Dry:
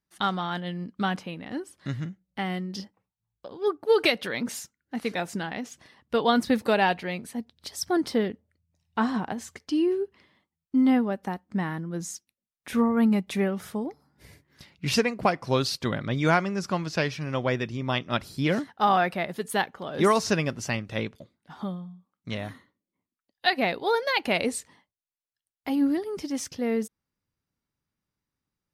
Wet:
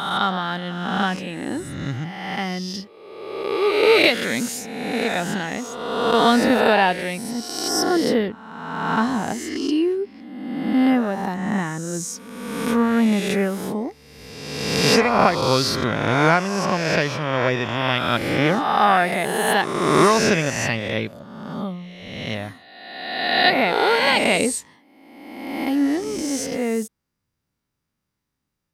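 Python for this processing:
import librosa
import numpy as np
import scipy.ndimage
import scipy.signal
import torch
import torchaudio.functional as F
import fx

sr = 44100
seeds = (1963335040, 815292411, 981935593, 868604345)

y = fx.spec_swells(x, sr, rise_s=1.47)
y = y * 10.0 ** (3.0 / 20.0)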